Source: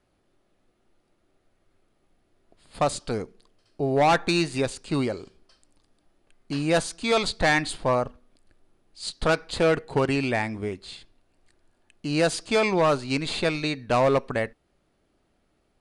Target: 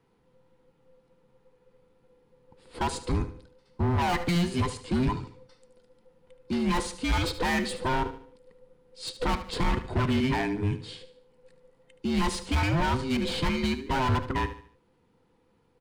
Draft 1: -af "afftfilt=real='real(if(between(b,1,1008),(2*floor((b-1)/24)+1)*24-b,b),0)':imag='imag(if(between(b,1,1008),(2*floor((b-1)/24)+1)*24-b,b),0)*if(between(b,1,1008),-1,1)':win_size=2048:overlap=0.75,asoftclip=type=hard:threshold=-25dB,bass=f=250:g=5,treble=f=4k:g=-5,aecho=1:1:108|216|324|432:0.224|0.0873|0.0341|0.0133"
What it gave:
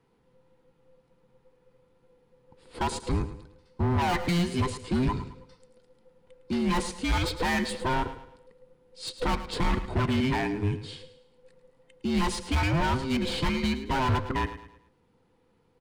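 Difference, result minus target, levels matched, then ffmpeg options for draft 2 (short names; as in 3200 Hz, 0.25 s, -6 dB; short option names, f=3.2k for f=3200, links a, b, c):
echo 34 ms late
-af "afftfilt=real='real(if(between(b,1,1008),(2*floor((b-1)/24)+1)*24-b,b),0)':imag='imag(if(between(b,1,1008),(2*floor((b-1)/24)+1)*24-b,b),0)*if(between(b,1,1008),-1,1)':win_size=2048:overlap=0.75,asoftclip=type=hard:threshold=-25dB,bass=f=250:g=5,treble=f=4k:g=-5,aecho=1:1:74|148|222|296:0.224|0.0873|0.0341|0.0133"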